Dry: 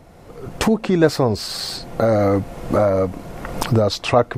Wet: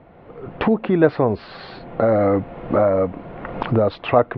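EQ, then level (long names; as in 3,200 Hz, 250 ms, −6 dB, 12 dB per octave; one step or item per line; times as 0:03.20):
low-pass filter 3,500 Hz 24 dB per octave
high-frequency loss of the air 310 metres
low-shelf EQ 110 Hz −10.5 dB
+1.5 dB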